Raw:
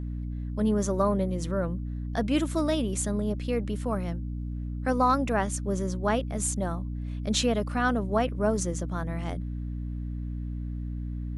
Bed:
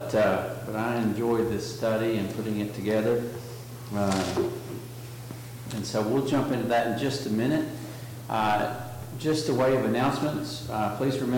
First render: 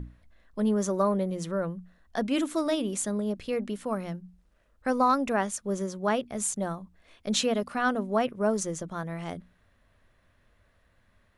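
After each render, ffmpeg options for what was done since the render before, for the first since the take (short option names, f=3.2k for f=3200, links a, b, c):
-af "bandreject=f=60:t=h:w=6,bandreject=f=120:t=h:w=6,bandreject=f=180:t=h:w=6,bandreject=f=240:t=h:w=6,bandreject=f=300:t=h:w=6"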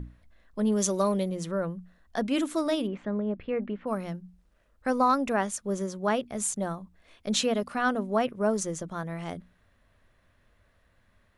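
-filter_complex "[0:a]asettb=1/sr,asplit=3[a][b][c];[a]atrim=end=0.724[d];[b]atrim=start=0.72:end=1.29,asetpts=PTS-STARTPTS,afade=t=in:d=0.004:c=qsin,afade=t=out:st=0.566:d=0.004:c=qsin,highshelf=f=2.1k:t=q:w=1.5:g=8[e];[c]atrim=start=1.286[f];[d][e]acrossfade=d=0.004:c1=hsin:c2=qsin[g];[g][f]acrossfade=d=0.004:c1=qsin:c2=hsin,asplit=3[h][i][j];[h]afade=t=out:st=2.86:d=0.02[k];[i]lowpass=f=2.5k:w=0.5412,lowpass=f=2.5k:w=1.3066,afade=t=in:st=2.86:d=0.02,afade=t=out:st=3.86:d=0.02[l];[j]afade=t=in:st=3.86:d=0.02[m];[k][l][m]amix=inputs=3:normalize=0"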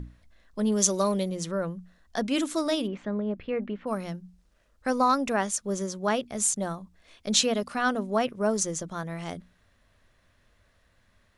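-af "equalizer=f=5.8k:w=0.73:g=7"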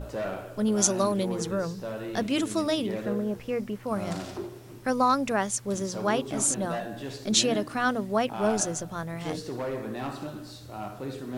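-filter_complex "[1:a]volume=-9.5dB[a];[0:a][a]amix=inputs=2:normalize=0"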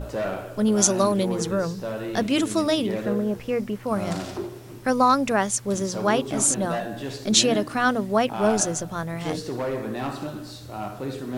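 -af "volume=4.5dB,alimiter=limit=-2dB:level=0:latency=1"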